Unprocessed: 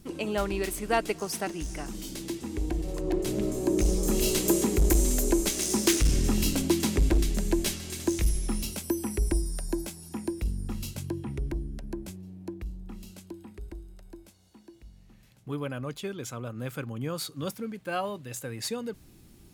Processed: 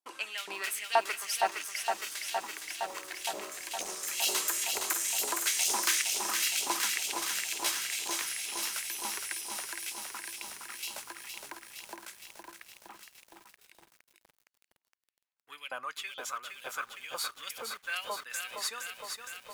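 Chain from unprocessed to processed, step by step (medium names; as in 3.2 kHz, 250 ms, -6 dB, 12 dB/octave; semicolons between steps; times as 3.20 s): gate -43 dBFS, range -32 dB; saturation -18.5 dBFS, distortion -17 dB; LFO high-pass saw up 2.1 Hz 780–3200 Hz; bit-crushed delay 464 ms, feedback 80%, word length 9-bit, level -5 dB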